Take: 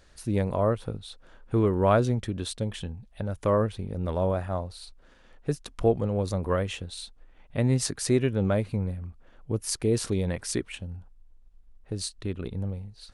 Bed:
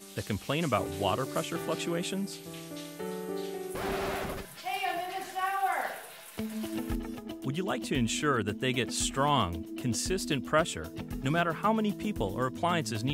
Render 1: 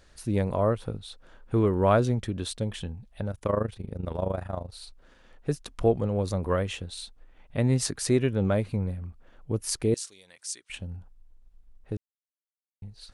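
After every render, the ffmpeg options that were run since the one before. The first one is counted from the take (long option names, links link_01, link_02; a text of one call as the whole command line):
ffmpeg -i in.wav -filter_complex "[0:a]asplit=3[link_01][link_02][link_03];[link_01]afade=type=out:start_time=3.29:duration=0.02[link_04];[link_02]tremolo=f=26:d=0.824,afade=type=in:start_time=3.29:duration=0.02,afade=type=out:start_time=4.72:duration=0.02[link_05];[link_03]afade=type=in:start_time=4.72:duration=0.02[link_06];[link_04][link_05][link_06]amix=inputs=3:normalize=0,asettb=1/sr,asplit=3[link_07][link_08][link_09];[link_07]atrim=end=9.944[link_10];[link_08]atrim=start=9.94:end=10.7,asetpts=PTS-STARTPTS,afade=type=in:duration=0.004:curve=qsin,afade=type=out:start_time=0.756:duration=0.004:curve=qsin,bandpass=frequency=7000:width_type=q:width=1.3[link_11];[link_09]atrim=start=10.696[link_12];[link_10][link_11]acrossfade=duration=0.004:curve1=hsin:curve2=qsin[link_13];[link_13][link_12]acrossfade=duration=0.004:curve1=qsin:curve2=hsin,asplit=3[link_14][link_15][link_16];[link_14]atrim=end=11.97,asetpts=PTS-STARTPTS,afade=type=out:start_time=11.966:duration=0.004:curve=hsin[link_17];[link_15]atrim=start=11.97:end=12.82,asetpts=PTS-STARTPTS,volume=0[link_18];[link_16]atrim=start=12.82,asetpts=PTS-STARTPTS,afade=type=in:duration=0.004:curve=hsin[link_19];[link_17][link_18][link_19]concat=n=3:v=0:a=1" out.wav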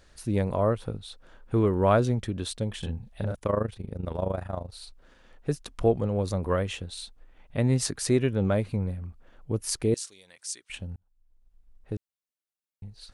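ffmpeg -i in.wav -filter_complex "[0:a]asettb=1/sr,asplit=3[link_01][link_02][link_03];[link_01]atrim=end=2.794[link_04];[link_02]atrim=start=2.79:end=3.35,asetpts=PTS-STARTPTS,afade=type=in:duration=0.004:curve=qsin,afade=type=out:start_time=0.556:duration=0.004:curve=qsin,asplit=2[link_05][link_06];[link_06]adelay=37,volume=-2dB[link_07];[link_05][link_07]amix=inputs=2:normalize=0,atrim=end_sample=24696[link_08];[link_03]atrim=start=3.346[link_09];[link_04][link_08]acrossfade=duration=0.004:curve1=hsin:curve2=qsin[link_10];[link_10][link_09]acrossfade=duration=0.004:curve1=qsin:curve2=hsin,asplit=2[link_11][link_12];[link_11]atrim=end=10.96,asetpts=PTS-STARTPTS,afade=type=out:start_time=10.956:duration=0.004:curve=hsin[link_13];[link_12]atrim=start=10.96,asetpts=PTS-STARTPTS,afade=type=in:duration=0.99[link_14];[link_13][link_14]concat=n=2:v=0:a=1" out.wav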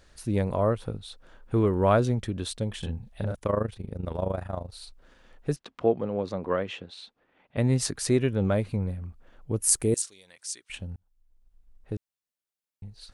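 ffmpeg -i in.wav -filter_complex "[0:a]asettb=1/sr,asplit=3[link_01][link_02][link_03];[link_01]atrim=end=5.564[link_04];[link_02]atrim=start=5.56:end=7.57,asetpts=PTS-STARTPTS,afade=type=in:duration=0.004:curve=qsin,afade=type=out:start_time=2.006:duration=0.004:curve=qsin,highpass=190,lowpass=3600[link_05];[link_03]atrim=start=7.566[link_06];[link_04][link_05]acrossfade=duration=0.004:curve1=hsin:curve2=qsin[link_07];[link_07][link_06]acrossfade=duration=0.004:curve1=qsin:curve2=hsin,asettb=1/sr,asplit=3[link_08][link_09][link_10];[link_08]atrim=end=9.624[link_11];[link_09]atrim=start=9.62:end=10.02,asetpts=PTS-STARTPTS,afade=type=in:duration=0.004:curve=qsin,afade=type=out:start_time=0.396:duration=0.004:curve=qsin,highshelf=frequency=6200:width_type=q:width=1.5:gain=9[link_12];[link_10]atrim=start=10.016[link_13];[link_11][link_12]acrossfade=duration=0.004:curve1=hsin:curve2=qsin[link_14];[link_14][link_13]acrossfade=duration=0.004:curve1=qsin:curve2=hsin" out.wav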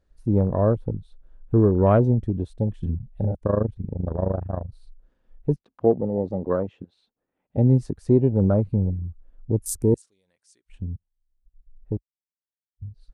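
ffmpeg -i in.wav -af "afwtdn=0.0282,tiltshelf=frequency=970:gain=7" out.wav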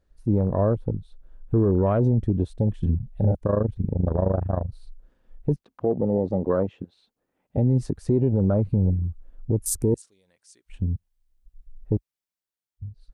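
ffmpeg -i in.wav -af "dynaudnorm=framelen=270:gausssize=9:maxgain=6.5dB,alimiter=limit=-12dB:level=0:latency=1:release=58" out.wav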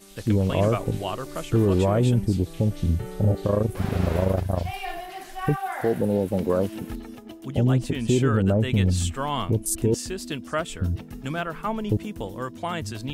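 ffmpeg -i in.wav -i bed.wav -filter_complex "[1:a]volume=-1dB[link_01];[0:a][link_01]amix=inputs=2:normalize=0" out.wav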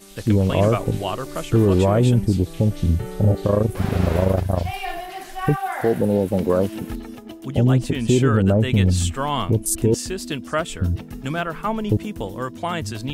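ffmpeg -i in.wav -af "volume=4dB" out.wav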